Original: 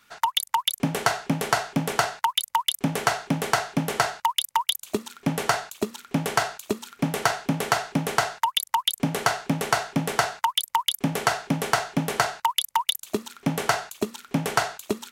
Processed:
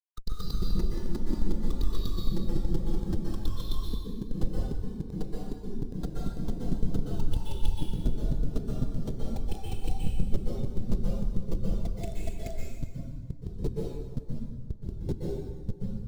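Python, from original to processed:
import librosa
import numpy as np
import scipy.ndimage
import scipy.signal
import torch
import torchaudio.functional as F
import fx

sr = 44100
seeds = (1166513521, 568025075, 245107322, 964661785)

y = fx.speed_glide(x, sr, from_pct=136, to_pct=52)
y = fx.schmitt(y, sr, flips_db=-14.5)
y = fx.band_shelf(y, sr, hz=1300.0, db=-9.5, octaves=2.5)
y = fx.rev_plate(y, sr, seeds[0], rt60_s=2.3, hf_ratio=0.75, predelay_ms=110, drr_db=-5.0)
y = fx.spectral_expand(y, sr, expansion=1.5)
y = y * librosa.db_to_amplitude(3.0)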